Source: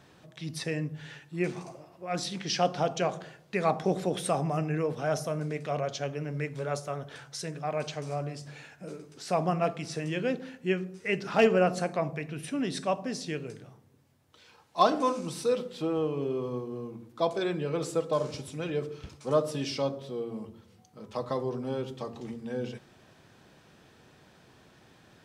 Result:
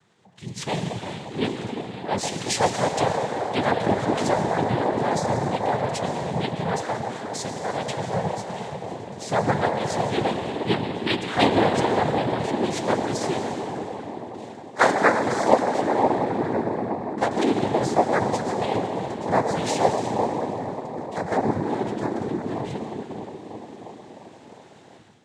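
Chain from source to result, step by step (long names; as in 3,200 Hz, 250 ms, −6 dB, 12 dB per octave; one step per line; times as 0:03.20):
on a send at −4 dB: convolution reverb RT60 4.2 s, pre-delay 65 ms
on the sum: flanger 0.33 Hz, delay 7.7 ms, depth 1.4 ms, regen +43%
feedback echo with a band-pass in the loop 354 ms, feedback 68%, band-pass 380 Hz, level −7 dB
automatic gain control gain up to 11 dB
cochlear-implant simulation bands 6
level −1.5 dB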